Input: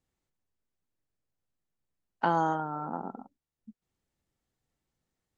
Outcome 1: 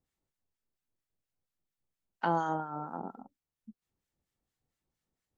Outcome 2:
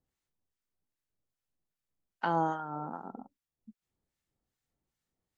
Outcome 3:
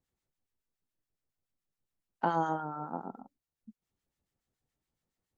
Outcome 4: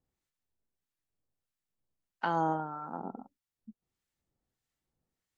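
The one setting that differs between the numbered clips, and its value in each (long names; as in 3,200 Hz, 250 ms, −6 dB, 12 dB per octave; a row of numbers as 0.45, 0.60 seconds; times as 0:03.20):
two-band tremolo in antiphase, speed: 4.3, 2.5, 7.1, 1.6 Hertz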